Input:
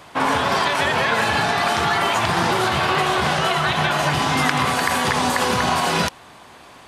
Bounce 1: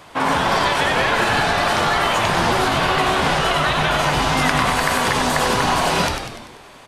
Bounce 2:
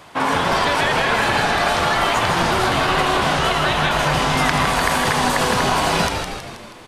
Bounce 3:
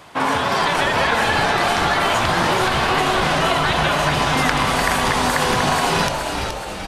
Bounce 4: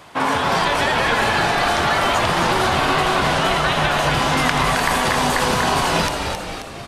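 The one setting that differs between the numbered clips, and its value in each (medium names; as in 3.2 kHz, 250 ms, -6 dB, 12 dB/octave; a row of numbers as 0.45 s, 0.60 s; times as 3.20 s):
frequency-shifting echo, time: 97 ms, 160 ms, 423 ms, 267 ms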